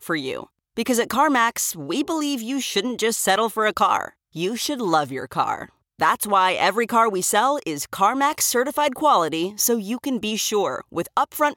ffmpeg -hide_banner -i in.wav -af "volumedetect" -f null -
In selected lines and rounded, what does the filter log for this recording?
mean_volume: -21.9 dB
max_volume: -6.3 dB